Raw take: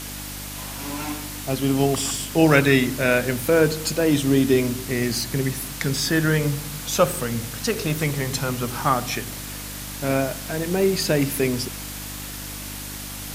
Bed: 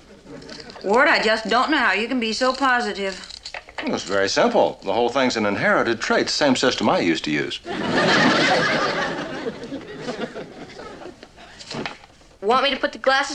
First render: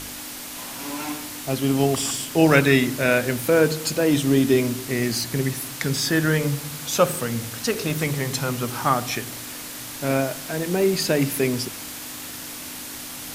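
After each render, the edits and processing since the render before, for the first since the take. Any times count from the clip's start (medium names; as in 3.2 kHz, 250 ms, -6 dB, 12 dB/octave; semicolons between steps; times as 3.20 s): de-hum 50 Hz, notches 4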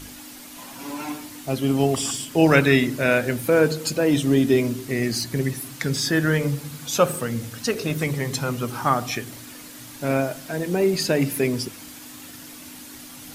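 noise reduction 8 dB, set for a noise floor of -35 dBFS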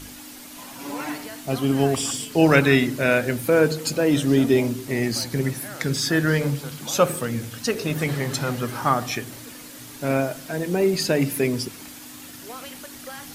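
add bed -21.5 dB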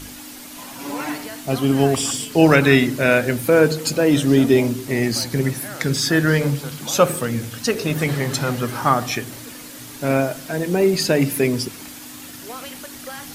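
trim +3.5 dB; peak limiter -1 dBFS, peak gain reduction 3 dB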